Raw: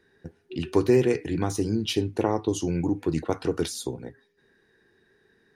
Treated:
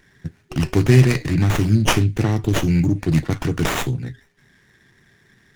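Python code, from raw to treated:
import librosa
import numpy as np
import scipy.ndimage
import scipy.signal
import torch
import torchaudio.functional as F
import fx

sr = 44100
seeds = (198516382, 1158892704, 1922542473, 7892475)

y = fx.graphic_eq_10(x, sr, hz=(125, 500, 1000, 2000, 4000, 8000), db=(12, -10, -10, 9, 7, 12))
y = fx.running_max(y, sr, window=9)
y = y * librosa.db_to_amplitude(6.0)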